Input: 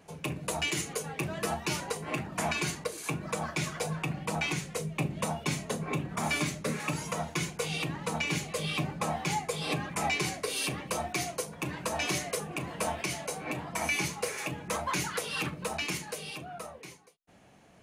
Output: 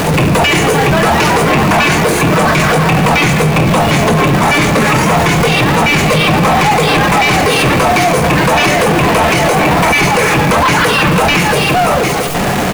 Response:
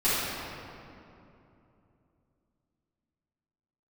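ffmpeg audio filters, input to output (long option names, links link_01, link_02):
-filter_complex "[0:a]aeval=exprs='val(0)+0.5*0.0168*sgn(val(0))':channel_layout=same,acrossover=split=2600[link_01][link_02];[link_02]acompressor=threshold=-46dB:ratio=4:attack=1:release=60[link_03];[link_01][link_03]amix=inputs=2:normalize=0,atempo=1.4,asplit=2[link_04][link_05];[1:a]atrim=start_sample=2205[link_06];[link_05][link_06]afir=irnorm=-1:irlink=0,volume=-22dB[link_07];[link_04][link_07]amix=inputs=2:normalize=0,apsyclip=33.5dB,volume=-6.5dB"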